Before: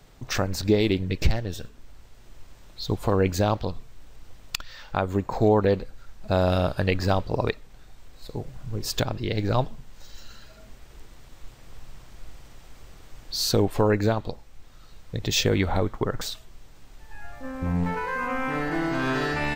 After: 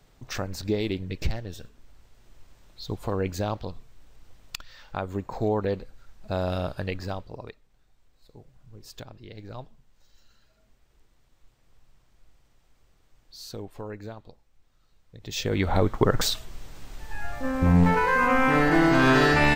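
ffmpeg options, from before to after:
-af "volume=7.5,afade=t=out:st=6.71:d=0.75:silence=0.298538,afade=t=in:st=15.19:d=0.29:silence=0.281838,afade=t=in:st=15.48:d=0.71:silence=0.237137"

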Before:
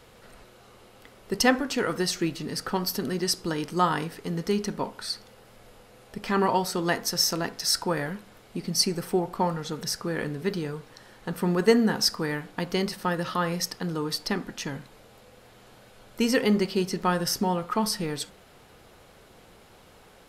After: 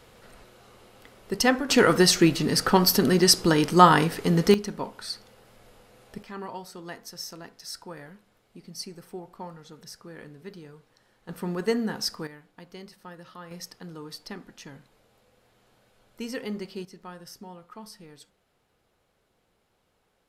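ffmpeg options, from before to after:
-af "asetnsamples=n=441:p=0,asendcmd='1.69 volume volume 8.5dB;4.54 volume volume -2.5dB;6.23 volume volume -14dB;11.29 volume volume -6dB;12.27 volume volume -17dB;13.51 volume volume -11dB;16.85 volume volume -18dB',volume=0.944"

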